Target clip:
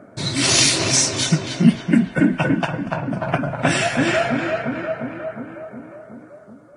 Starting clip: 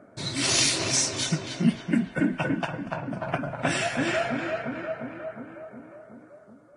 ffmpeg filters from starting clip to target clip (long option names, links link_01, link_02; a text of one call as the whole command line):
ffmpeg -i in.wav -af "equalizer=frequency=150:width_type=o:width=1.6:gain=2.5,volume=7dB" out.wav